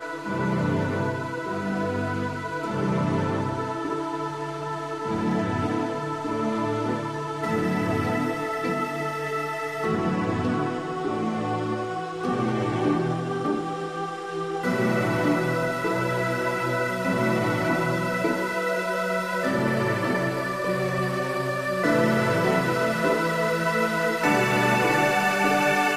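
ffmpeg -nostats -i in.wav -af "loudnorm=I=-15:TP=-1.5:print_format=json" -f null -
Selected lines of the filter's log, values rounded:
"input_i" : "-24.7",
"input_tp" : "-9.3",
"input_lra" : "5.6",
"input_thresh" : "-34.7",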